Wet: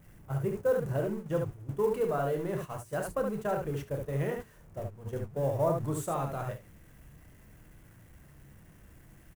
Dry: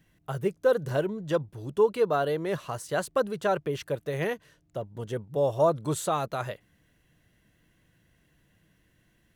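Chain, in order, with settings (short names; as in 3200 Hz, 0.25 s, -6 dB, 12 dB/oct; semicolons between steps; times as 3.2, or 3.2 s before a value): zero-crossing step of -35.5 dBFS; notches 60/120/180/240/300/360/420 Hz; on a send: early reflections 29 ms -8.5 dB, 72 ms -4.5 dB; on the sum: companded quantiser 6-bit; bell 4000 Hz -11.5 dB 1.3 oct; gate -31 dBFS, range -11 dB; low shelf 140 Hz +9.5 dB; gain -7.5 dB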